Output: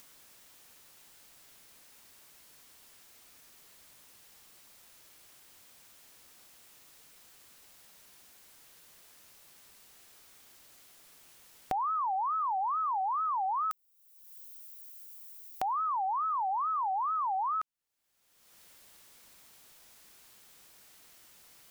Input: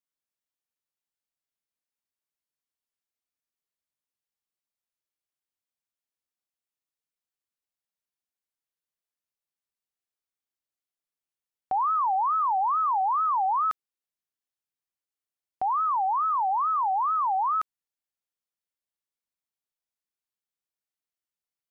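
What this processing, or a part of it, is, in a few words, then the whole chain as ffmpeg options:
upward and downward compression: -filter_complex "[0:a]asplit=3[link_01][link_02][link_03];[link_01]afade=type=out:start_time=13.55:duration=0.02[link_04];[link_02]aemphasis=mode=production:type=riaa,afade=type=in:start_time=13.55:duration=0.02,afade=type=out:start_time=15.74:duration=0.02[link_05];[link_03]afade=type=in:start_time=15.74:duration=0.02[link_06];[link_04][link_05][link_06]amix=inputs=3:normalize=0,acompressor=mode=upward:threshold=-31dB:ratio=2.5,acompressor=threshold=-30dB:ratio=6"

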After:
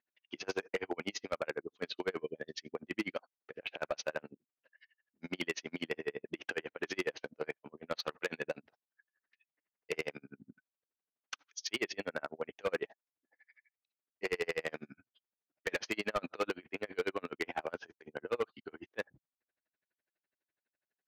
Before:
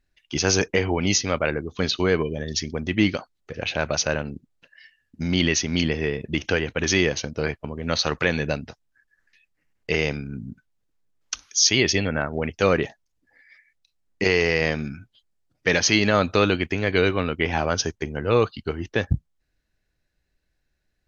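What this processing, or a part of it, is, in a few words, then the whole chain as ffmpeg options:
helicopter radio: -af "highpass=360,lowpass=2600,aeval=exprs='val(0)*pow(10,-38*(0.5-0.5*cos(2*PI*12*n/s))/20)':channel_layout=same,asoftclip=type=hard:threshold=-22.5dB,volume=-4dB"

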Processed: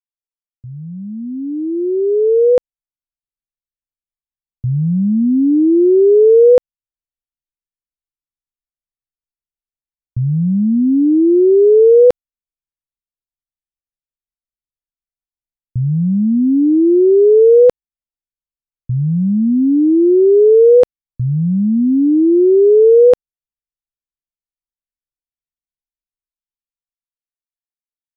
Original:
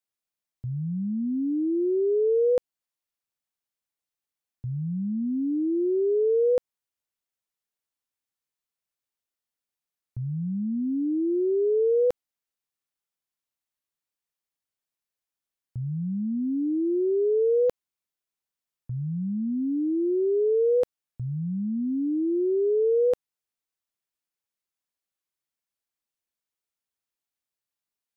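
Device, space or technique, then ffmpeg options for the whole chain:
voice memo with heavy noise removal: -af "anlmdn=6.31,dynaudnorm=framelen=350:gausssize=13:maxgain=16dB"

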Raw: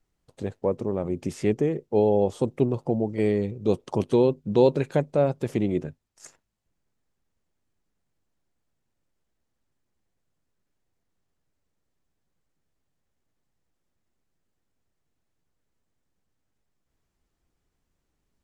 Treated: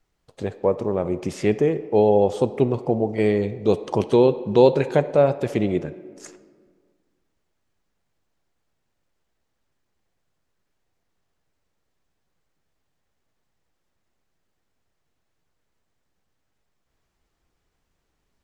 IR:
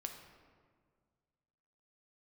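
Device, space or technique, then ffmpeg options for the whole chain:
filtered reverb send: -filter_complex "[0:a]asplit=2[link_01][link_02];[link_02]highpass=370,lowpass=6900[link_03];[1:a]atrim=start_sample=2205[link_04];[link_03][link_04]afir=irnorm=-1:irlink=0,volume=-1dB[link_05];[link_01][link_05]amix=inputs=2:normalize=0,volume=2.5dB"

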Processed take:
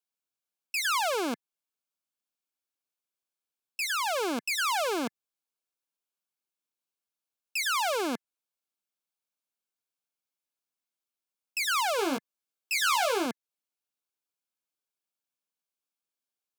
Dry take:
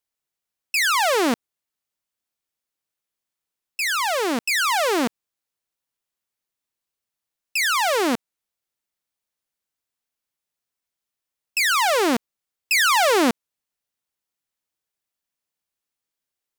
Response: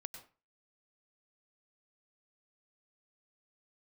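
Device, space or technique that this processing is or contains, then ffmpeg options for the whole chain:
PA system with an anti-feedback notch: -filter_complex "[0:a]highpass=frequency=170:width=0.5412,highpass=frequency=170:width=1.3066,asuperstop=centerf=1900:order=12:qfactor=5.8,alimiter=limit=-13.5dB:level=0:latency=1:release=223,asettb=1/sr,asplit=3[link_01][link_02][link_03];[link_01]atrim=end=11.974[link_04];[link_02]atrim=start=11.97:end=13.26,asetpts=PTS-STARTPTS,afade=type=in:duration=0.004:curve=qsin,afade=type=out:start_time=1.286:duration=0.004:curve=qsin,asplit=2[link_05][link_06];[link_06]adelay=15,volume=-4dB[link_07];[link_05][link_07]amix=inputs=2:normalize=0,atrim=end_sample=56889[link_08];[link_03]atrim=start=13.256[link_09];[link_04][link_08]acrossfade=duration=0.004:curve1=hsin:curve2=qsin[link_10];[link_10][link_09]acrossfade=duration=0.004:curve1=qsin:curve2=hsin,volume=-6.5dB"

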